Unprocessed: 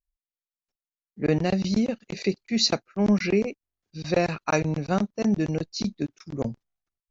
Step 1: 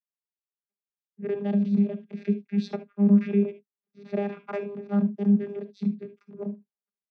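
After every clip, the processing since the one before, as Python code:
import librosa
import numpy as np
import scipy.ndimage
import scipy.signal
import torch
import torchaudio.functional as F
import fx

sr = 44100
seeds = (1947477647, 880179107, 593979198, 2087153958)

y = scipy.signal.sosfilt(scipy.signal.cheby1(2, 1.0, [190.0, 2700.0], 'bandpass', fs=sr, output='sos'), x)
y = fx.vocoder(y, sr, bands=16, carrier='saw', carrier_hz=202.0)
y = fx.rev_gated(y, sr, seeds[0], gate_ms=90, shape='rising', drr_db=11.5)
y = y * 10.0 ** (1.5 / 20.0)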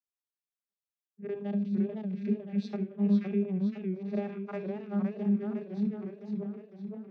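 y = fx.echo_warbled(x, sr, ms=510, feedback_pct=54, rate_hz=2.8, cents=151, wet_db=-5)
y = y * 10.0 ** (-7.0 / 20.0)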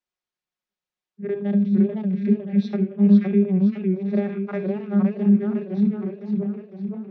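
y = fx.air_absorb(x, sr, metres=110.0)
y = y + 0.43 * np.pad(y, (int(5.5 * sr / 1000.0), 0))[:len(y)]
y = y * 10.0 ** (8.5 / 20.0)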